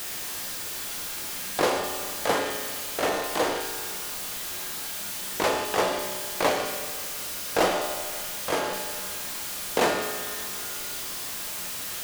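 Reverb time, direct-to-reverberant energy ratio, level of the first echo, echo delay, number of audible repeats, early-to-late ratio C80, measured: 1.9 s, 3.0 dB, none, none, none, 6.5 dB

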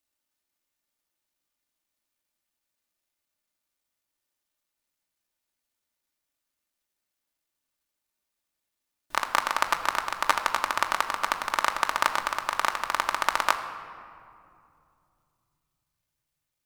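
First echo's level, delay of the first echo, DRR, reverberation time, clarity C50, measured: none, none, 3.5 dB, 2.5 s, 9.5 dB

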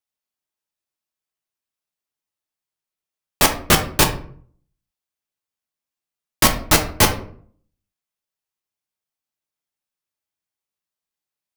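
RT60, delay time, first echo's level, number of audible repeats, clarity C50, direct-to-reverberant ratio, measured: 0.55 s, none, none, none, 10.5 dB, 2.5 dB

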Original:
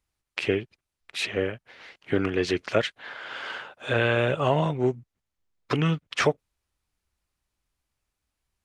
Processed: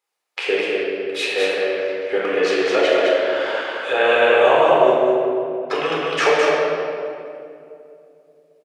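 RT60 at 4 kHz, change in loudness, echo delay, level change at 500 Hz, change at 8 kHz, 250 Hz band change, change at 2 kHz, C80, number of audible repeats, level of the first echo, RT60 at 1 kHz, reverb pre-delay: 1.5 s, +8.5 dB, 0.21 s, +12.0 dB, n/a, +2.5 dB, +9.5 dB, -2.5 dB, 1, -3.0 dB, 2.2 s, 10 ms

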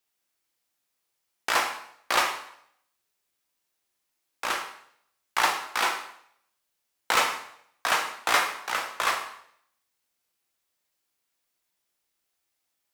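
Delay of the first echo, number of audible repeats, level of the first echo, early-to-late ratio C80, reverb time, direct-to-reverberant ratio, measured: none, none, none, 10.0 dB, 0.70 s, 2.0 dB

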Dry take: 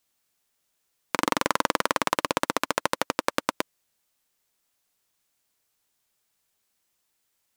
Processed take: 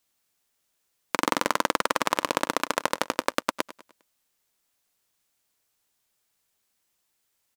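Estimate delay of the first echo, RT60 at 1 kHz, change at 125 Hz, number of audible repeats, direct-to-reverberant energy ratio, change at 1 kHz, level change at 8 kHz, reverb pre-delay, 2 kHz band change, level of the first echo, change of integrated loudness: 0.101 s, none, -3.0 dB, 3, none, 0.0 dB, 0.0 dB, none, 0.0 dB, -17.0 dB, 0.0 dB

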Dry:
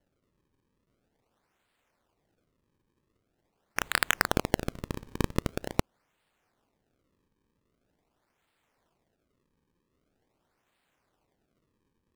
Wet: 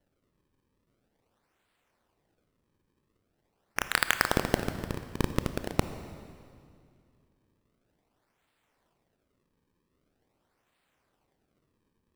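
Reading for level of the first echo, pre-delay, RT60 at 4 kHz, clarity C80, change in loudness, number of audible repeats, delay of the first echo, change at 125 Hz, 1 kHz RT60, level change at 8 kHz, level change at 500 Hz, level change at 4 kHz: none, 22 ms, 2.0 s, 11.0 dB, +0.5 dB, none, none, +1.0 dB, 2.2 s, 0.0 dB, +0.5 dB, +0.5 dB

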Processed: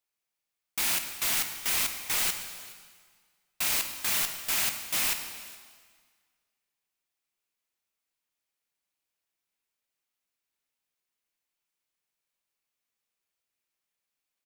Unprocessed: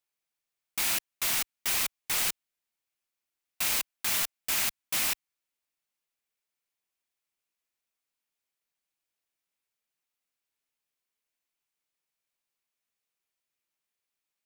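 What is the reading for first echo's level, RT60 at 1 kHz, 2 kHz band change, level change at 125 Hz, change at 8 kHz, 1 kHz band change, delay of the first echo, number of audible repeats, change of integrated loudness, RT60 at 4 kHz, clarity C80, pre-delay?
-22.0 dB, 1.7 s, +1.0 dB, +1.0 dB, +1.0 dB, +1.0 dB, 0.417 s, 1, +1.0 dB, 1.5 s, 8.5 dB, 5 ms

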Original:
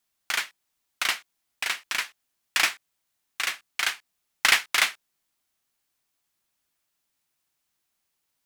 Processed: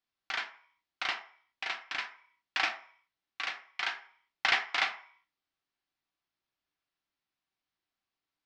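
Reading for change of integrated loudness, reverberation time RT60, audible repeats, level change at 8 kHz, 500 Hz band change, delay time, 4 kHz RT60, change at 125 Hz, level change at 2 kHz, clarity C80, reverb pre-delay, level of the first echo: -8.0 dB, 0.50 s, none, -20.5 dB, -3.0 dB, none, 0.55 s, n/a, -7.0 dB, 16.0 dB, 3 ms, none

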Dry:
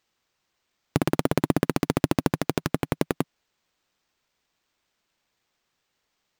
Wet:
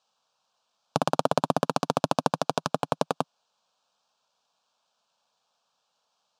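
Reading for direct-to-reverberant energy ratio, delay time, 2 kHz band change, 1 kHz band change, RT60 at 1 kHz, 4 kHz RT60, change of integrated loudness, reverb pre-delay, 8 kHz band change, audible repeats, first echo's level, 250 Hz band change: none, none, -3.5 dB, +6.0 dB, none, none, -1.5 dB, none, -1.0 dB, none, none, -7.0 dB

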